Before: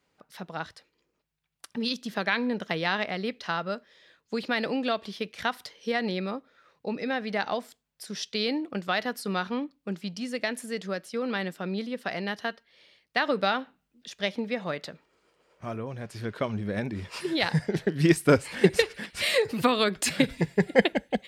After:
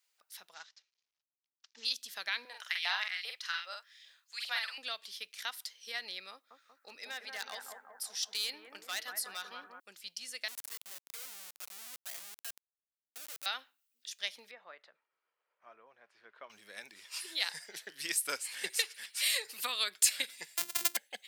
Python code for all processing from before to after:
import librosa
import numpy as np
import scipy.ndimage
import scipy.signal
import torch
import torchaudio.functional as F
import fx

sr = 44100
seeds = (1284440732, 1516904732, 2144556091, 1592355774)

y = fx.chain(x, sr, fx.cvsd(bps=32000),
    fx.upward_expand(threshold_db=-44.0, expansion=1.5), at=(0.54, 1.85))
y = fx.chain(y, sr, fx.filter_lfo_highpass(shape='saw_up', hz=2.5, low_hz=610.0, high_hz=2600.0, q=2.1),
    fx.doubler(ms=46.0, db=-4), at=(2.45, 4.78))
y = fx.chain(y, sr, fx.clip_hard(threshold_db=-21.5),
    fx.echo_bbd(ms=186, stages=2048, feedback_pct=60, wet_db=-4.0), at=(6.32, 9.8))
y = fx.chain(y, sr, fx.harmonic_tremolo(hz=2.2, depth_pct=100, crossover_hz=570.0),
    fx.schmitt(flips_db=-39.5), at=(10.48, 13.46))
y = fx.chain(y, sr, fx.lowpass(hz=1300.0, slope=12),
    fx.low_shelf(hz=210.0, db=-10.5), at=(14.51, 16.5))
y = fx.chain(y, sr, fx.sample_sort(block=128),
    fx.hum_notches(base_hz=50, count=9),
    fx.over_compress(threshold_db=-22.0, ratio=-0.5), at=(20.57, 20.97))
y = fx.highpass(y, sr, hz=570.0, slope=6)
y = np.diff(y, prepend=0.0)
y = y * librosa.db_to_amplitude(3.0)